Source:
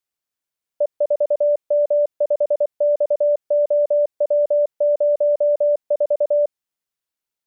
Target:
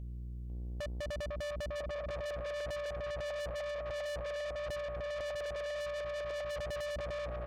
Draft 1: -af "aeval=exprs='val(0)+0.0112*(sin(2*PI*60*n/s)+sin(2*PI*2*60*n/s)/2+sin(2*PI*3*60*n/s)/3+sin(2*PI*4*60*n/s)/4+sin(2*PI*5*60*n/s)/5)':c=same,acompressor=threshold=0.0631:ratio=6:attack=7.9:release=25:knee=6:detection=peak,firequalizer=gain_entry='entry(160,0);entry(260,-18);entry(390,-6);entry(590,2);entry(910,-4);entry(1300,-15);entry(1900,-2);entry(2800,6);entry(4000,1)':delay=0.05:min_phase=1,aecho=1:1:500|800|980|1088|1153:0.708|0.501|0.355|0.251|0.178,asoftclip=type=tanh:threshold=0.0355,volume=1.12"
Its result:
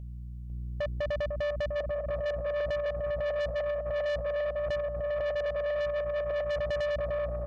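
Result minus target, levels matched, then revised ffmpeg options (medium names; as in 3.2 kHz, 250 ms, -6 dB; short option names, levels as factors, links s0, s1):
saturation: distortion -4 dB
-af "aeval=exprs='val(0)+0.0112*(sin(2*PI*60*n/s)+sin(2*PI*2*60*n/s)/2+sin(2*PI*3*60*n/s)/3+sin(2*PI*4*60*n/s)/4+sin(2*PI*5*60*n/s)/5)':c=same,acompressor=threshold=0.0631:ratio=6:attack=7.9:release=25:knee=6:detection=peak,firequalizer=gain_entry='entry(160,0);entry(260,-18);entry(390,-6);entry(590,2);entry(910,-4);entry(1300,-15);entry(1900,-2);entry(2800,6);entry(4000,1)':delay=0.05:min_phase=1,aecho=1:1:500|800|980|1088|1153:0.708|0.501|0.355|0.251|0.178,asoftclip=type=tanh:threshold=0.0119,volume=1.12"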